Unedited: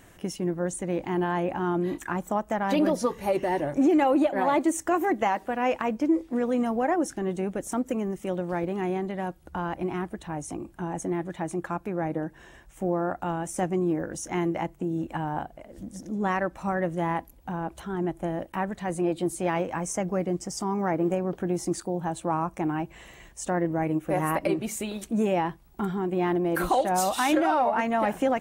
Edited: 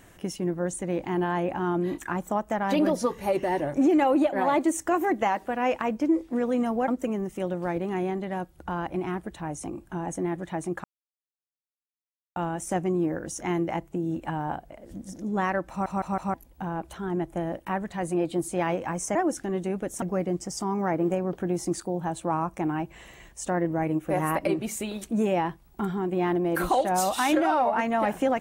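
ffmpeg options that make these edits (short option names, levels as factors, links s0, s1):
-filter_complex "[0:a]asplit=10[s0][s1][s2][s3][s4][s5][s6][s7][s8][s9];[s0]atrim=end=6.882[s10];[s1]atrim=start=7.748:end=11.71,asetpts=PTS-STARTPTS,afade=t=out:st=3.958:d=0.004:c=hsin[s11];[s2]atrim=start=11.71:end=13.23,asetpts=PTS-STARTPTS,volume=0[s12];[s3]atrim=start=13.23:end=16.732,asetpts=PTS-STARTPTS,afade=t=in:d=0.004:c=hsin[s13];[s4]atrim=start=16.568:end=16.732[s14];[s5]atrim=start=16.568:end=16.732[s15];[s6]atrim=start=16.568:end=16.732[s16];[s7]atrim=start=17.208:end=20.022[s17];[s8]atrim=start=6.878:end=7.752[s18];[s9]atrim=start=20.018[s19];[s11][s12][s13]concat=n=3:v=0:a=1[s20];[s10][s20]acrossfade=d=0.004:c1=hsin:c2=hsin[s21];[s21][s14]acrossfade=d=0.004:c1=hsin:c2=hsin[s22];[s22][s15]acrossfade=d=0.004:c1=hsin:c2=hsin[s23];[s23][s16]acrossfade=d=0.004:c1=hsin:c2=hsin[s24];[s24][s17]acrossfade=d=0.004:c1=hsin:c2=hsin[s25];[s25][s18]acrossfade=d=0.004:c1=hsin:c2=hsin[s26];[s26][s19]acrossfade=d=0.004:c1=hsin:c2=hsin"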